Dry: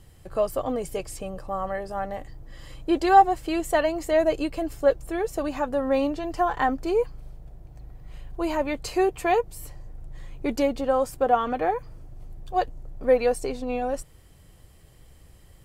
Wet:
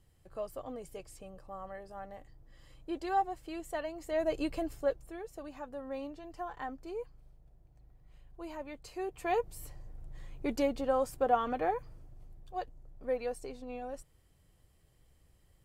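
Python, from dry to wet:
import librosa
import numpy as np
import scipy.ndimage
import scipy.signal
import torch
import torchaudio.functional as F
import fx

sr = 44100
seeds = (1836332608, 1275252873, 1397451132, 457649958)

y = fx.gain(x, sr, db=fx.line((3.96, -15.0), (4.52, -5.0), (5.23, -17.0), (8.98, -17.0), (9.43, -7.0), (11.77, -7.0), (12.57, -14.0)))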